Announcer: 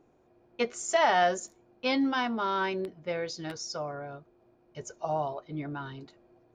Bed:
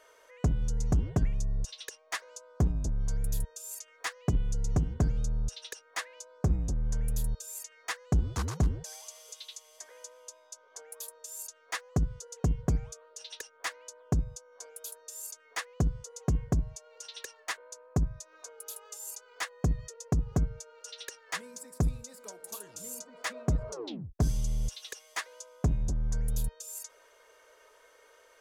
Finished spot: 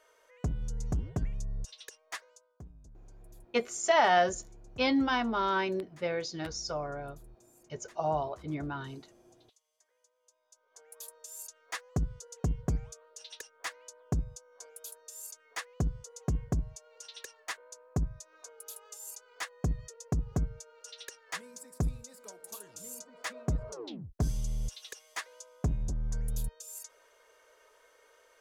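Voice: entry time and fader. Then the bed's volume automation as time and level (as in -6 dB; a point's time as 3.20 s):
2.95 s, 0.0 dB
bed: 2.18 s -5.5 dB
2.64 s -23.5 dB
10.13 s -23.5 dB
11.07 s -3 dB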